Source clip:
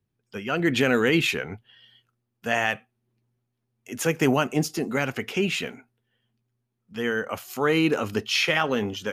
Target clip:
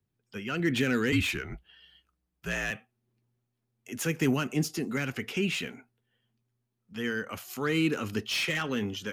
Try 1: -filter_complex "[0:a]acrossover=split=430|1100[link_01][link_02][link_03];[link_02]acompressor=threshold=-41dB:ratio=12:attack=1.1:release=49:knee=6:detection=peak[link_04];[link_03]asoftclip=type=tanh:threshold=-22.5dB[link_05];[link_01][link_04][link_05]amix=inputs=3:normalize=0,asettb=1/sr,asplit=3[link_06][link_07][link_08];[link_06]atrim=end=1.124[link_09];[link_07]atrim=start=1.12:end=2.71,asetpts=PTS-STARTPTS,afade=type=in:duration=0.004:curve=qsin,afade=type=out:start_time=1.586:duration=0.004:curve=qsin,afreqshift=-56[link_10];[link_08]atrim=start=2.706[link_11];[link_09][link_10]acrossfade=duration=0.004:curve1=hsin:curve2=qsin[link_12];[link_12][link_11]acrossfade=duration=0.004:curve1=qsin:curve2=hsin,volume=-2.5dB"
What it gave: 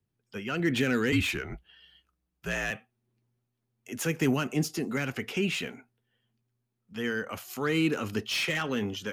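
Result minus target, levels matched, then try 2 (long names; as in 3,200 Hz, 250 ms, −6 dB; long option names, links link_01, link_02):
downward compressor: peak gain reduction −9.5 dB
-filter_complex "[0:a]acrossover=split=430|1100[link_01][link_02][link_03];[link_02]acompressor=threshold=-51.5dB:ratio=12:attack=1.1:release=49:knee=6:detection=peak[link_04];[link_03]asoftclip=type=tanh:threshold=-22.5dB[link_05];[link_01][link_04][link_05]amix=inputs=3:normalize=0,asettb=1/sr,asplit=3[link_06][link_07][link_08];[link_06]atrim=end=1.124[link_09];[link_07]atrim=start=1.12:end=2.71,asetpts=PTS-STARTPTS,afade=type=in:duration=0.004:curve=qsin,afade=type=out:start_time=1.586:duration=0.004:curve=qsin,afreqshift=-56[link_10];[link_08]atrim=start=2.706[link_11];[link_09][link_10]acrossfade=duration=0.004:curve1=hsin:curve2=qsin[link_12];[link_12][link_11]acrossfade=duration=0.004:curve1=qsin:curve2=hsin,volume=-2.5dB"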